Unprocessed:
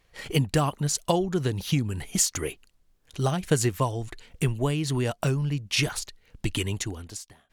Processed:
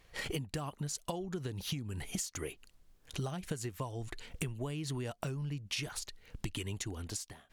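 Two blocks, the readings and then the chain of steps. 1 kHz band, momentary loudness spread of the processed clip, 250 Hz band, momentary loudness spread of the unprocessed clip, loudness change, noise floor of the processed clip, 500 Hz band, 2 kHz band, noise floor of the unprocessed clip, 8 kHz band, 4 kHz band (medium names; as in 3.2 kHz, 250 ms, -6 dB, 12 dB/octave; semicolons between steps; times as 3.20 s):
-13.5 dB, 6 LU, -12.5 dB, 11 LU, -12.5 dB, -66 dBFS, -13.5 dB, -10.5 dB, -65 dBFS, -12.0 dB, -10.5 dB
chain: compression 12:1, threshold -37 dBFS, peak gain reduction 21 dB; trim +2 dB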